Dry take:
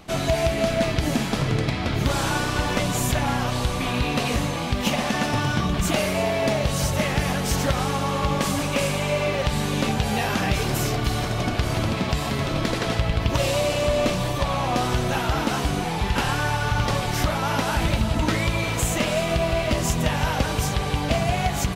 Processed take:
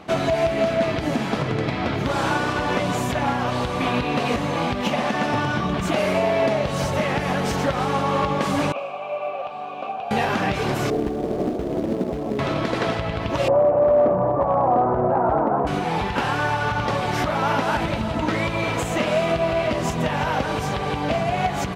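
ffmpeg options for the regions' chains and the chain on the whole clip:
-filter_complex "[0:a]asettb=1/sr,asplit=3[a][b][c];[a]atrim=end=8.724[d];[b]atrim=start=8.72:end=10.11,asetpts=PTS-STARTPTS,afade=t=in:d=0.004:c=qsin,afade=t=out:st=1.386:d=0.004:c=qsin,asplit=3[e][f][g];[e]bandpass=f=730:t=q:w=8,volume=0dB[h];[f]bandpass=f=1.09k:t=q:w=8,volume=-6dB[i];[g]bandpass=f=2.44k:t=q:w=8,volume=-9dB[j];[h][i][j]amix=inputs=3:normalize=0,acrusher=bits=9:mode=log:mix=0:aa=0.000001[k];[c]atrim=start=10.106[l];[d][k]acrossfade=d=0.004:c1=hsin:c2=qsin[m];[m][l]acrossfade=d=0.004:c1=qsin:c2=hsin,asettb=1/sr,asplit=3[n][o][p];[n]atrim=end=10.904[q];[o]atrim=start=10.9:end=12.39,asetpts=PTS-STARTPTS,afade=t=in:d=0.004:c=qsin,afade=t=out:st=1.486:d=0.004:c=qsin,lowpass=f=430:t=q:w=1.5,equalizer=f=110:w=1.8:g=-13.5,acrusher=bits=4:mode=log:mix=0:aa=0.000001[r];[p]atrim=start=12.386[s];[q][r]acrossfade=d=0.004:c1=hsin:c2=qsin[t];[t][s]acrossfade=d=0.004:c1=qsin:c2=hsin,asettb=1/sr,asplit=3[u][v][w];[u]atrim=end=13.484[x];[v]atrim=start=13.48:end=15.67,asetpts=PTS-STARTPTS,afade=t=in:d=0.004:c=qsin,afade=t=out:st=2.186:d=0.004:c=qsin,lowpass=f=1.2k:w=0.5412,lowpass=f=1.2k:w=1.3066,asoftclip=type=hard:threshold=-17.5dB,equalizer=f=630:w=0.99:g=7[y];[w]atrim=start=15.666[z];[x][y]acrossfade=d=0.004:c1=hsin:c2=qsin[aa];[aa][z]acrossfade=d=0.004:c1=qsin:c2=hsin,lowpass=f=1.6k:p=1,alimiter=limit=-17.5dB:level=0:latency=1:release=248,highpass=f=260:p=1,volume=8dB"

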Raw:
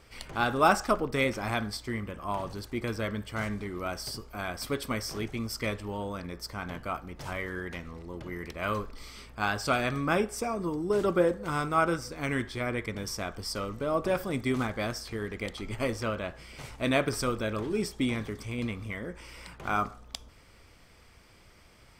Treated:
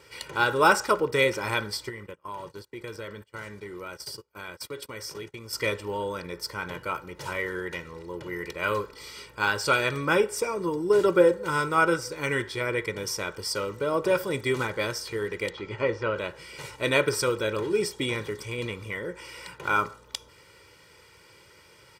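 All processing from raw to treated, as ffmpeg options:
-filter_complex "[0:a]asettb=1/sr,asplit=3[a][b][c];[a]atrim=end=1.894[d];[b]atrim=start=1.89:end=5.53,asetpts=PTS-STARTPTS,afade=t=in:d=0.004:c=qsin,afade=t=out:st=3.636:d=0.004:c=qsin,agate=range=-29dB:threshold=-39dB:ratio=16:release=100:detection=peak,acompressor=threshold=-40dB:ratio=3:attack=3.2:release=140:knee=1:detection=peak[e];[c]atrim=start=5.526[f];[d][e]acrossfade=d=0.004:c1=hsin:c2=qsin[g];[g][f]acrossfade=d=0.004:c1=qsin:c2=hsin,asettb=1/sr,asplit=3[h][i][j];[h]atrim=end=15.504[k];[i]atrim=start=15.5:end=16.16,asetpts=PTS-STARTPTS,afade=t=in:d=0.004:c=qsin,afade=t=out:st=0.656:d=0.004:c=qsin,acrossover=split=2800[l][m];[m]acompressor=threshold=-57dB:ratio=4:attack=1:release=60[n];[l][n]amix=inputs=2:normalize=0,lowpass=f=6.4k:w=0.5412,lowpass=f=6.4k:w=1.3066[o];[j]atrim=start=16.156[p];[k][o]acrossfade=d=0.004:c1=hsin:c2=qsin[q];[q][p]acrossfade=d=0.004:c1=qsin:c2=hsin,highpass=150,equalizer=f=690:w=3.5:g=-5.5,aecho=1:1:2.1:0.71,volume=3.5dB"

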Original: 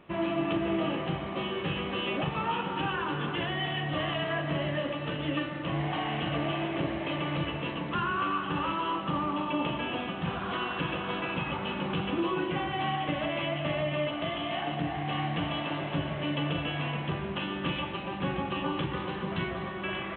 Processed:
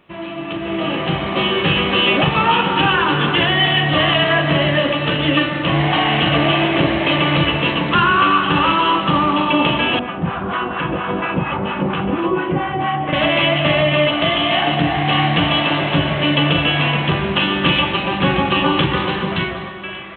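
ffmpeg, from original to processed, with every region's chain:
-filter_complex "[0:a]asettb=1/sr,asplit=3[a][b][c];[a]atrim=end=9.994[d];[b]atrim=start=9.99:end=13.13,asetpts=PTS-STARTPTS,afade=t=in:d=0.004:c=qsin,afade=t=out:st=3.136:d=0.004:c=qsin,lowpass=1.6k,acrossover=split=710[e][f];[e]aeval=exprs='val(0)*(1-0.7/2+0.7/2*cos(2*PI*4.3*n/s))':c=same[g];[f]aeval=exprs='val(0)*(1-0.7/2-0.7/2*cos(2*PI*4.3*n/s))':c=same[h];[g][h]amix=inputs=2:normalize=0[i];[c]atrim=start=13.126[j];[d][i]acrossfade=d=0.004:c1=hsin:c2=qsin[k];[k][j]acrossfade=d=0.004:c1=qsin:c2=hsin,highshelf=f=2.2k:g=8,dynaudnorm=f=110:g=17:m=15.5dB"

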